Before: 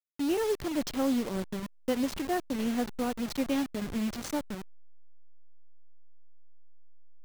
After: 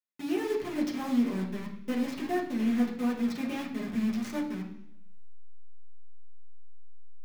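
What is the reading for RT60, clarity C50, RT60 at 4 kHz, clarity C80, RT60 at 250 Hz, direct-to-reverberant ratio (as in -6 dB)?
0.70 s, 8.0 dB, 0.95 s, 10.5 dB, 0.85 s, -4.0 dB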